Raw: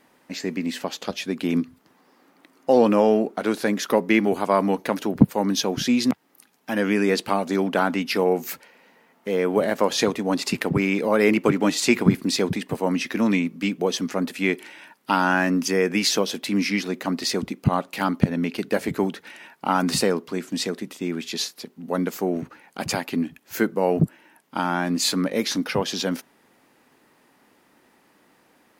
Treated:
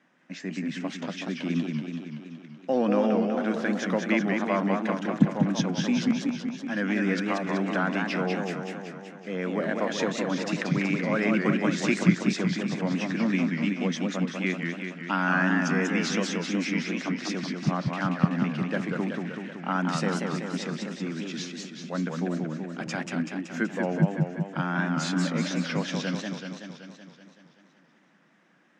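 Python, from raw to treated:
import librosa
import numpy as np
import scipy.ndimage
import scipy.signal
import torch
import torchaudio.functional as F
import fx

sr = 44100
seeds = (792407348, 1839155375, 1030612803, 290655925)

y = fx.cabinet(x, sr, low_hz=140.0, low_slope=24, high_hz=6200.0, hz=(170.0, 430.0, 890.0, 1600.0, 4400.0), db=(7, -8, -6, 5, -10))
y = fx.echo_warbled(y, sr, ms=189, feedback_pct=65, rate_hz=2.8, cents=195, wet_db=-4.0)
y = y * 10.0 ** (-6.0 / 20.0)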